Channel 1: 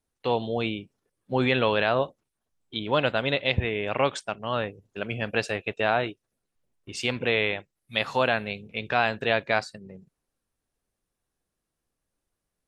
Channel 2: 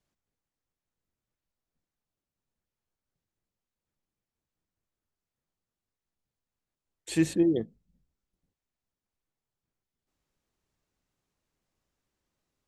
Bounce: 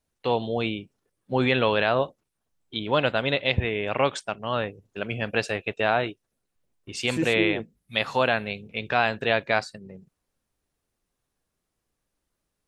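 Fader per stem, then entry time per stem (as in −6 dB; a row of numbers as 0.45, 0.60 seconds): +1.0, −2.5 decibels; 0.00, 0.00 seconds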